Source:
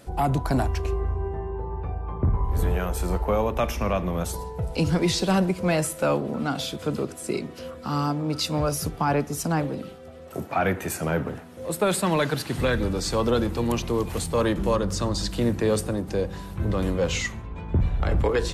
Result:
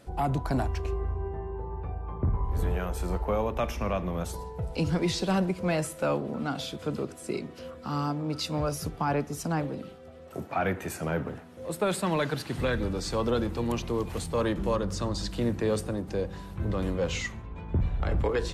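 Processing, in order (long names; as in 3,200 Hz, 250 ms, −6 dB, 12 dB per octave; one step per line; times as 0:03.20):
high-shelf EQ 7,900 Hz −6.5 dB
level −4.5 dB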